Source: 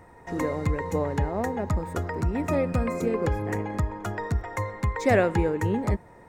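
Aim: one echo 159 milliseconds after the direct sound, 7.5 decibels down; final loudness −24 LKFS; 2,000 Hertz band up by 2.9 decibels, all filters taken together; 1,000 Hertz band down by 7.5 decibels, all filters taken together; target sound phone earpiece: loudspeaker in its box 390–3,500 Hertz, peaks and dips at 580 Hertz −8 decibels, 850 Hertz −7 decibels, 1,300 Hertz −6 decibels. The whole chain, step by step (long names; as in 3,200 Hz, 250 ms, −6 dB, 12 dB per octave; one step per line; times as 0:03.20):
loudspeaker in its box 390–3,500 Hz, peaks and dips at 580 Hz −8 dB, 850 Hz −7 dB, 1,300 Hz −6 dB
parametric band 1,000 Hz −3.5 dB
parametric band 2,000 Hz +5.5 dB
single-tap delay 159 ms −7.5 dB
level +8.5 dB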